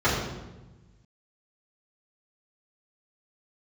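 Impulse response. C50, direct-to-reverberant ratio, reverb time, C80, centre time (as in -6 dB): 2.0 dB, -11.5 dB, 1.1 s, 4.0 dB, 63 ms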